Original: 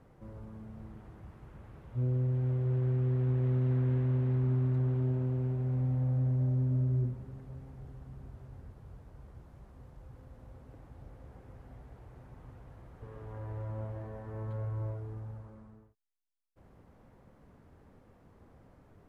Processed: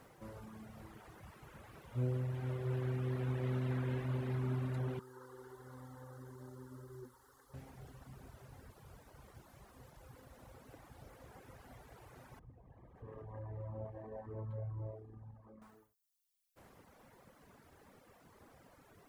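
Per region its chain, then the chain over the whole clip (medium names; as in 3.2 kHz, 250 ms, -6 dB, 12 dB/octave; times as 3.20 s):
4.99–7.54 s: bass shelf 390 Hz -11 dB + static phaser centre 660 Hz, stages 6
12.39–15.62 s: resonances exaggerated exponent 1.5 + band-stop 1.4 kHz, Q 6.2 + doubling 26 ms -13.5 dB
whole clip: reverb removal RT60 1.2 s; tilt EQ +3 dB/octave; trim +5 dB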